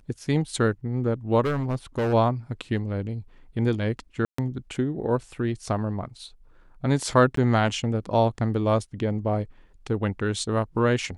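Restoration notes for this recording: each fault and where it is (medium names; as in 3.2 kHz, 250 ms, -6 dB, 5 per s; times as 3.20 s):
1.44–2.14 s: clipped -21.5 dBFS
4.25–4.38 s: dropout 134 ms
7.36–7.37 s: dropout 13 ms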